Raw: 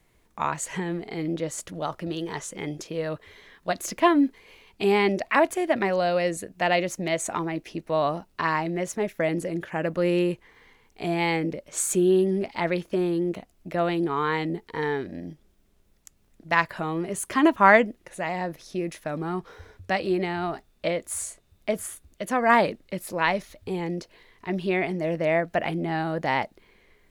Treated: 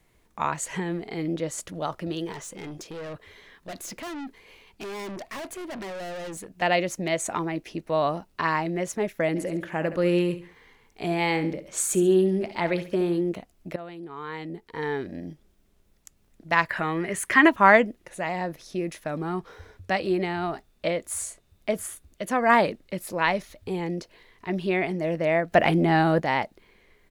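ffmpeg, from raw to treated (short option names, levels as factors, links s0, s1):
-filter_complex "[0:a]asettb=1/sr,asplit=3[s0][s1][s2];[s0]atrim=end=2.324[s3];[s1]atrim=start=2.32:end=6.62,asetpts=PTS-STARTPTS,afade=t=in:d=0.004:c=qsin,afade=t=out:st=4.296:d=0.004:c=qsin,aeval=exprs='(tanh(50.1*val(0)+0.15)-tanh(0.15))/50.1':c=same[s4];[s2]atrim=start=6.616[s5];[s3][s4]acrossfade=d=0.004:c1=hsin:c2=qsin[s6];[s6][s5]acrossfade=d=0.004:c1=qsin:c2=hsin,asplit=3[s7][s8][s9];[s7]afade=t=out:st=9.35:d=0.02[s10];[s8]aecho=1:1:69|138|207:0.237|0.0806|0.0274,afade=t=in:st=9.35:d=0.02,afade=t=out:st=13.2:d=0.02[s11];[s9]afade=t=in:st=13.2:d=0.02[s12];[s10][s11][s12]amix=inputs=3:normalize=0,asettb=1/sr,asplit=3[s13][s14][s15];[s13]atrim=end=16.694[s16];[s14]atrim=start=16.69:end=17.49,asetpts=PTS-STARTPTS,afade=t=in:d=0.004:c=qsin,afade=t=out:st=0.796:d=0.004:c=qsin,equalizer=f=1900:w=1.7:g=13.5[s17];[s15]atrim=start=17.486[s18];[s16][s17]acrossfade=d=0.004:c1=hsin:c2=qsin[s19];[s19][s18]acrossfade=d=0.004:c1=qsin:c2=hsin,asettb=1/sr,asplit=3[s20][s21][s22];[s20]atrim=end=25.524[s23];[s21]atrim=start=25.52:end=26.2,asetpts=PTS-STARTPTS,afade=t=in:d=0.004:c=qsin,afade=t=out:st=0.676:d=0.004:c=qsin,acontrast=86[s24];[s22]atrim=start=26.196[s25];[s23][s24]acrossfade=d=0.004:c1=hsin:c2=qsin[s26];[s26][s25]acrossfade=d=0.004:c1=qsin:c2=hsin,asplit=2[s27][s28];[s27]atrim=end=13.76,asetpts=PTS-STARTPTS,afade=t=out:st=13.756:d=0.004:c=hsin:silence=0.16788[s29];[s28]atrim=start=13.76,asetpts=PTS-STARTPTS,afade=t=in:d=1.3:c=qua:silence=0.16788[s30];[s29][s30]concat=n=2:v=0:a=1"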